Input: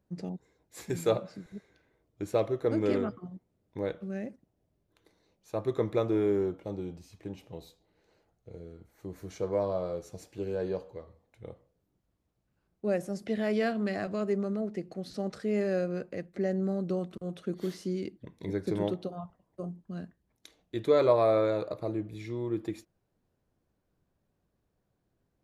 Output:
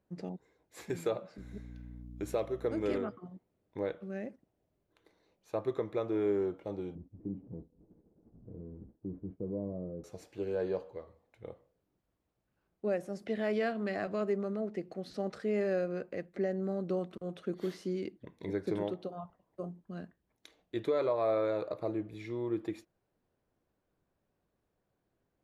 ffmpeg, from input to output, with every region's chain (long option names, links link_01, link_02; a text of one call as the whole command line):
ffmpeg -i in.wav -filter_complex "[0:a]asettb=1/sr,asplit=3[link_01][link_02][link_03];[link_01]atrim=end=1.384[link_04];[link_02]atrim=start=1.38:end=2.98,asetpts=PTS-STARTPTS,afade=type=in:duration=0.004:curve=qsin,afade=type=out:start_time=1.596:duration=0.004:curve=qsin,highshelf=frequency=5500:gain=9.5,bandreject=frequency=4500:width=25,aeval=exprs='val(0)+0.01*(sin(2*PI*60*n/s)+sin(2*PI*2*60*n/s)/2+sin(2*PI*3*60*n/s)/3+sin(2*PI*4*60*n/s)/4+sin(2*PI*5*60*n/s)/5)':channel_layout=same[link_05];[link_03]atrim=start=2.976[link_06];[link_04][link_05]acrossfade=duration=0.004:curve1=hsin:curve2=qsin[link_07];[link_07][link_06]acrossfade=duration=0.004:curve1=qsin:curve2=hsin,asettb=1/sr,asplit=3[link_08][link_09][link_10];[link_08]atrim=end=6.954[link_11];[link_09]atrim=start=6.95:end=10.04,asetpts=PTS-STARTPTS,afade=type=in:duration=0.004:curve=qsin,afade=type=out:start_time=3.086:duration=0.004:curve=qsin,aeval=exprs='val(0)+0.5*0.00944*sgn(val(0))':channel_layout=same,lowpass=frequency=240:width_type=q:width=1.9,agate=range=-33dB:threshold=-41dB:ratio=3:release=100:detection=peak[link_12];[link_10]atrim=start=10.036[link_13];[link_11][link_12]acrossfade=duration=0.004:curve1=hsin:curve2=qsin[link_14];[link_14][link_13]acrossfade=duration=0.004:curve1=qsin:curve2=hsin,alimiter=limit=-21dB:level=0:latency=1:release=493,bass=frequency=250:gain=-6,treble=frequency=4000:gain=-7" out.wav